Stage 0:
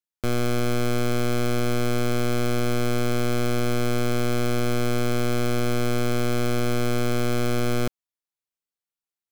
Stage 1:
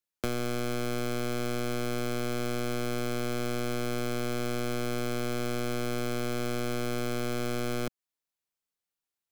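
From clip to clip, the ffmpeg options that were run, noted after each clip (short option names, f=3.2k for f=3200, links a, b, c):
-filter_complex "[0:a]acrossover=split=180|2100[a][b][c];[a]acompressor=threshold=-38dB:ratio=4[d];[b]acompressor=threshold=-32dB:ratio=4[e];[c]acompressor=threshold=-39dB:ratio=4[f];[d][e][f]amix=inputs=3:normalize=0,volume=1.5dB"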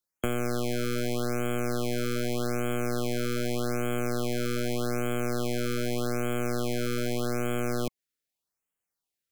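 -af "afftfilt=real='re*(1-between(b*sr/1024,820*pow(4800/820,0.5+0.5*sin(2*PI*0.83*pts/sr))/1.41,820*pow(4800/820,0.5+0.5*sin(2*PI*0.83*pts/sr))*1.41))':imag='im*(1-between(b*sr/1024,820*pow(4800/820,0.5+0.5*sin(2*PI*0.83*pts/sr))/1.41,820*pow(4800/820,0.5+0.5*sin(2*PI*0.83*pts/sr))*1.41))':win_size=1024:overlap=0.75,volume=2.5dB"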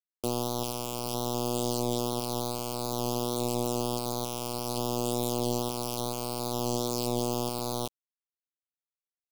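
-af "flanger=delay=8:depth=1.2:regen=55:speed=0.57:shape=triangular,acrusher=bits=5:dc=4:mix=0:aa=0.000001,asuperstop=centerf=1800:order=4:qfactor=0.79"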